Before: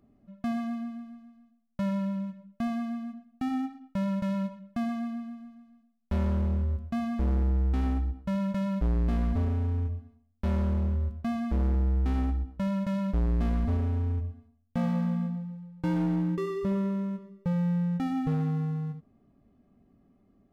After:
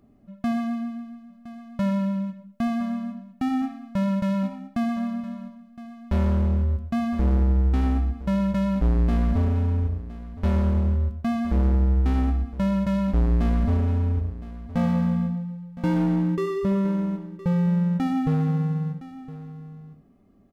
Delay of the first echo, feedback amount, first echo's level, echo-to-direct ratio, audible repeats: 1,014 ms, repeats not evenly spaced, −16.0 dB, −16.0 dB, 1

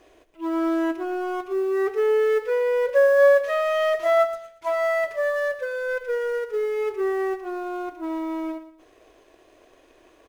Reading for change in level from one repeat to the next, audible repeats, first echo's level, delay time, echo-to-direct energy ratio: −11.0 dB, 3, −13.0 dB, 116 ms, −12.5 dB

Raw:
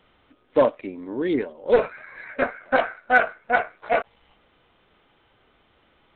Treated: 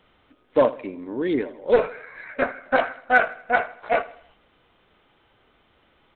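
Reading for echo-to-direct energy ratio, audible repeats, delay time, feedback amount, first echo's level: −17.5 dB, 3, 80 ms, 45%, −18.5 dB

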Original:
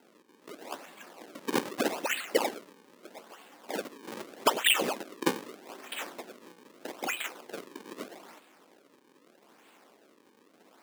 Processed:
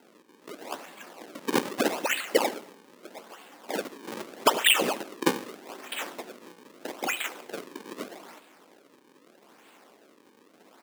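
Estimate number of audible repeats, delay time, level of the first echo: 3, 72 ms, −20.0 dB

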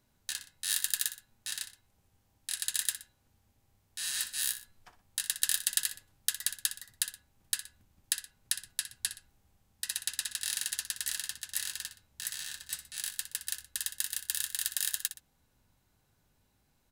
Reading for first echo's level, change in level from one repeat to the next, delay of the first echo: −12.0 dB, −8.0 dB, 61 ms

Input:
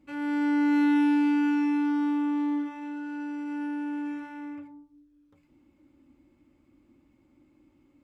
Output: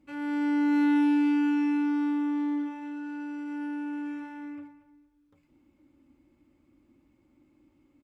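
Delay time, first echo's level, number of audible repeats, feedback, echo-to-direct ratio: 230 ms, −15.5 dB, 2, 26%, −15.0 dB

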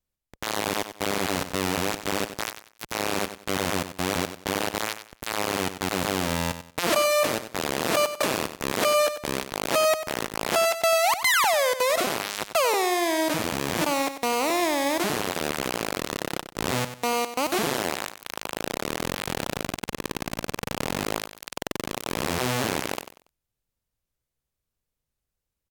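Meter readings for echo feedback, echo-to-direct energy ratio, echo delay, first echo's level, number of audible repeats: 28%, −10.5 dB, 94 ms, −11.0 dB, 3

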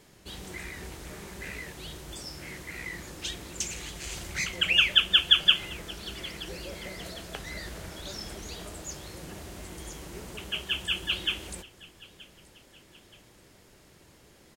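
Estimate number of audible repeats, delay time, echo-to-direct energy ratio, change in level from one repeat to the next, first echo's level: 2, 926 ms, −20.5 dB, −6.5 dB, −21.5 dB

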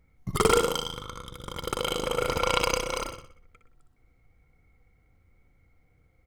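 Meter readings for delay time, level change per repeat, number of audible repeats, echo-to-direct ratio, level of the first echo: 61 ms, −8.0 dB, 4, −6.5 dB, −7.5 dB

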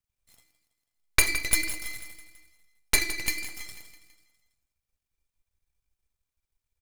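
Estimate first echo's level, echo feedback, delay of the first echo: −13.5 dB, 54%, 164 ms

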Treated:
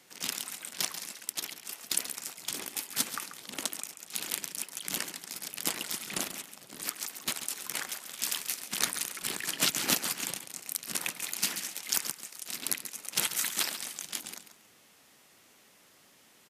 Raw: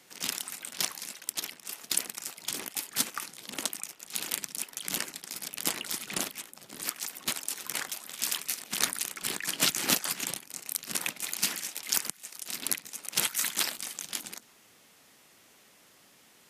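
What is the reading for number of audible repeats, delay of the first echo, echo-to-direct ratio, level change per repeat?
2, 137 ms, −11.0 dB, −13.5 dB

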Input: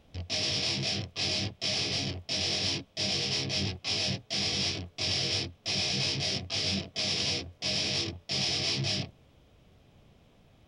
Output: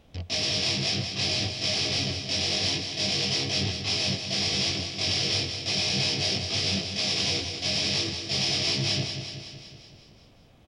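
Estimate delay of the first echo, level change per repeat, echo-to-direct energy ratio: 187 ms, −4.5 dB, −6.0 dB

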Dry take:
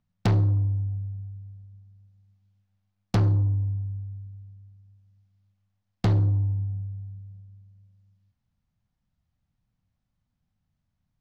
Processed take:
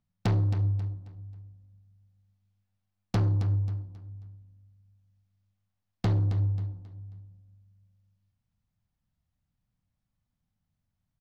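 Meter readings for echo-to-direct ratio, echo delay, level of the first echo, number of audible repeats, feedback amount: −10.5 dB, 269 ms, −11.0 dB, 3, 34%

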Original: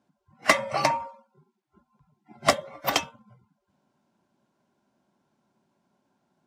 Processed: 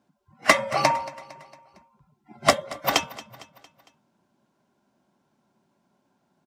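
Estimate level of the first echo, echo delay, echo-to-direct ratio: −19.0 dB, 228 ms, −17.5 dB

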